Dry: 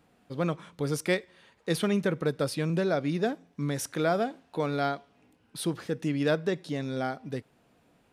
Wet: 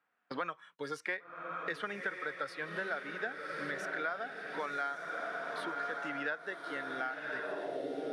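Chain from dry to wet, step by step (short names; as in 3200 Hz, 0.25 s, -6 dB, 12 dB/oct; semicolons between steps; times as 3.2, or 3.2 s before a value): spectral noise reduction 12 dB; gate -54 dBFS, range -25 dB; on a send: diffused feedback echo 1.084 s, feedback 54%, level -6.5 dB; on the sum: band-pass sweep 1500 Hz -> 460 Hz, 7.37–7.89; three-band squash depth 100%; gain +2 dB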